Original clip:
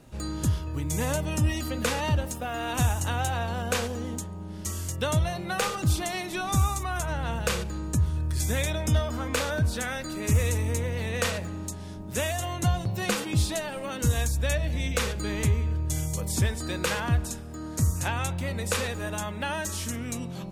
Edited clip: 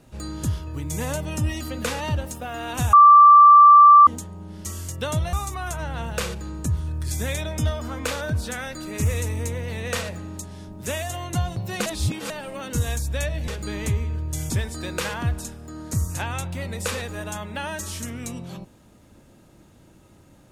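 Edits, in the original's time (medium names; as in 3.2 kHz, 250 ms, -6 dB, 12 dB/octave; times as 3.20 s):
2.93–4.07 s: bleep 1.17 kHz -6.5 dBFS
5.33–6.62 s: delete
13.15–13.59 s: reverse
14.77–15.05 s: delete
16.07–16.36 s: delete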